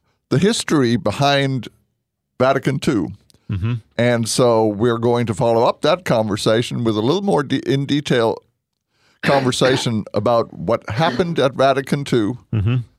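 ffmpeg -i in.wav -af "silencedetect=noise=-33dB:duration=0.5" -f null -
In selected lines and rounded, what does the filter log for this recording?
silence_start: 1.67
silence_end: 2.40 | silence_duration: 0.73
silence_start: 8.38
silence_end: 9.23 | silence_duration: 0.85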